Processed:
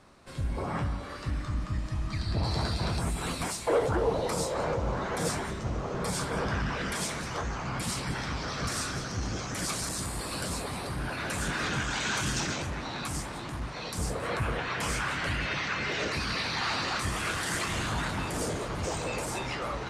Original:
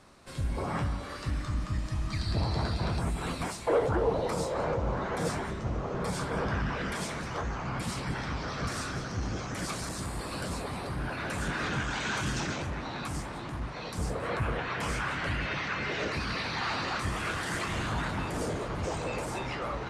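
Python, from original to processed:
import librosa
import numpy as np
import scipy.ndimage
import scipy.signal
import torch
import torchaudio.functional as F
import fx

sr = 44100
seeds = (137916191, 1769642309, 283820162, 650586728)

y = fx.high_shelf(x, sr, hz=3900.0, db=fx.steps((0.0, -3.5), (2.43, 8.5)))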